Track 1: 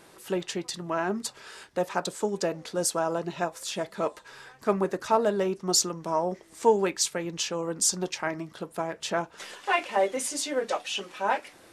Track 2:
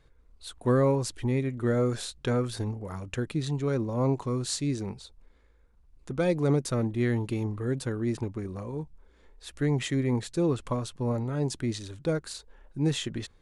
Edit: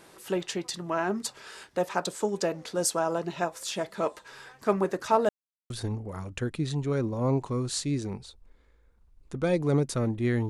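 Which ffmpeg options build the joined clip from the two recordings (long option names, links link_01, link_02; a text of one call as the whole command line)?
ffmpeg -i cue0.wav -i cue1.wav -filter_complex "[0:a]apad=whole_dur=10.49,atrim=end=10.49,asplit=2[link_01][link_02];[link_01]atrim=end=5.29,asetpts=PTS-STARTPTS,afade=type=out:start_time=5.286:duration=0.004:curve=hsin[link_03];[link_02]atrim=start=5.29:end=5.7,asetpts=PTS-STARTPTS,volume=0[link_04];[1:a]atrim=start=2.46:end=7.25,asetpts=PTS-STARTPTS,afade=type=in:duration=0.004:curve=hsin[link_05];[link_03][link_04][link_05]concat=n=3:v=0:a=1" out.wav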